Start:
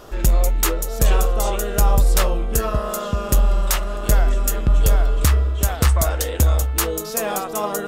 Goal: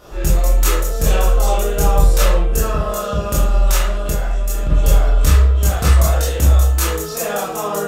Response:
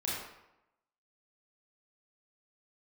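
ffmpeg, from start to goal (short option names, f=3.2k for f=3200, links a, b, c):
-filter_complex "[1:a]atrim=start_sample=2205,afade=t=out:st=0.44:d=0.01,atrim=end_sample=19845,asetrate=70560,aresample=44100[a];[0:a][a]afir=irnorm=-1:irlink=0,asplit=3[b][c][d];[b]afade=t=out:st=3.96:d=0.02[e];[c]acompressor=threshold=-17dB:ratio=6,afade=t=in:st=3.96:d=0.02,afade=t=out:st=4.69:d=0.02[f];[d]afade=t=in:st=4.69:d=0.02[g];[e][f][g]amix=inputs=3:normalize=0,volume=2dB"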